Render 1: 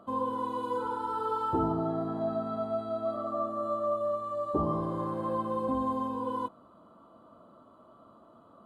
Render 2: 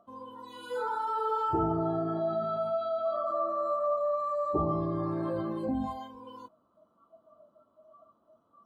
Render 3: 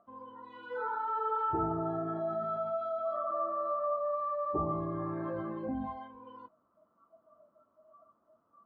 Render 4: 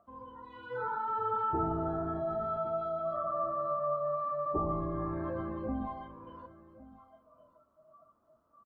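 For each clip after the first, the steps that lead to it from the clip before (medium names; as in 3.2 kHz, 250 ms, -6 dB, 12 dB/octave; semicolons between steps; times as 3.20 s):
spectral noise reduction 21 dB; in parallel at -3 dB: compressor with a negative ratio -39 dBFS, ratio -1
resonant low-pass 1.9 kHz, resonance Q 2; trim -5 dB
octave divider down 2 oct, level -5 dB; delay 1111 ms -18.5 dB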